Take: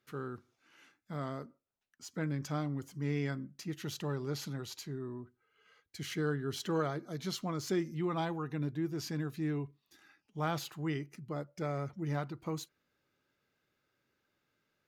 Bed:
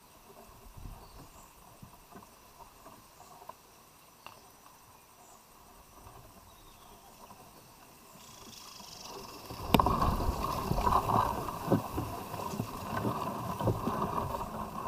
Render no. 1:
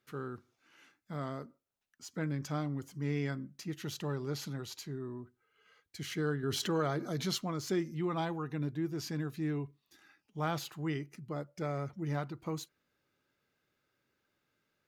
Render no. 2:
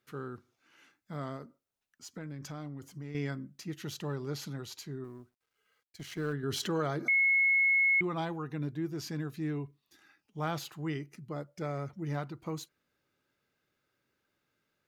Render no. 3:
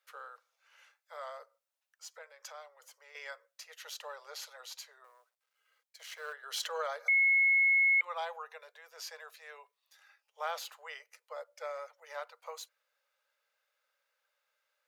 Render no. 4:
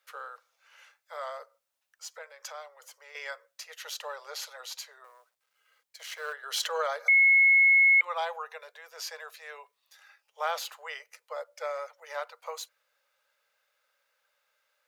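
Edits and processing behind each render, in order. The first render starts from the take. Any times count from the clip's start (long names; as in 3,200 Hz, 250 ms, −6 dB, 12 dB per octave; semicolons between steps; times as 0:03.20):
0:06.43–0:07.38: envelope flattener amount 50%
0:01.36–0:03.15: downward compressor, threshold −38 dBFS; 0:05.04–0:06.33: mu-law and A-law mismatch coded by A; 0:07.08–0:08.01: beep over 2,180 Hz −22.5 dBFS
Butterworth high-pass 490 Hz 96 dB per octave; notch filter 710 Hz, Q 12
level +6 dB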